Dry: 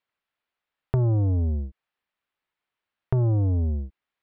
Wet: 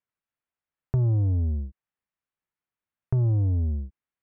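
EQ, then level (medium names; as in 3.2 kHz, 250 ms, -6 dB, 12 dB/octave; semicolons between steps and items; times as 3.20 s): distance through air 140 m; tone controls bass +9 dB, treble -8 dB; bass shelf 65 Hz -6 dB; -7.5 dB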